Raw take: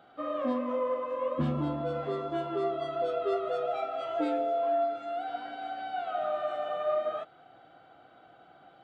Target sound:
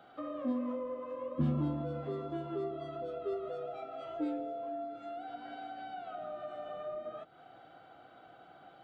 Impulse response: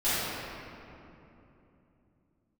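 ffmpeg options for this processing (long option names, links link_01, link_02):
-filter_complex "[0:a]acrossover=split=350[link_01][link_02];[link_02]acompressor=threshold=-43dB:ratio=6[link_03];[link_01][link_03]amix=inputs=2:normalize=0"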